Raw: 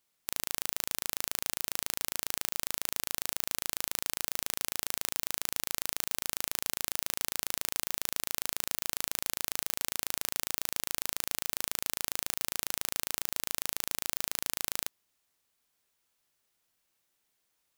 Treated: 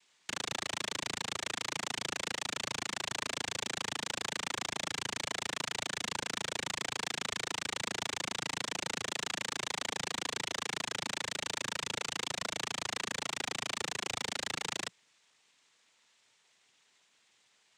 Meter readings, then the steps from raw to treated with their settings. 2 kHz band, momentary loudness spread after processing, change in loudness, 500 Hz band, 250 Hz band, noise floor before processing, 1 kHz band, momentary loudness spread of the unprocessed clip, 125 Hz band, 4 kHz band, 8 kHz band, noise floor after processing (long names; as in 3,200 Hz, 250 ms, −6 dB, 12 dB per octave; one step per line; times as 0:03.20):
+4.0 dB, 0 LU, −3.0 dB, +4.0 dB, +4.5 dB, −78 dBFS, +4.0 dB, 0 LU, +3.5 dB, +2.0 dB, −4.5 dB, −71 dBFS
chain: low-pass filter 4,900 Hz 24 dB per octave
cochlear-implant simulation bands 6
soft clipping −29.5 dBFS, distortion −19 dB
level +6 dB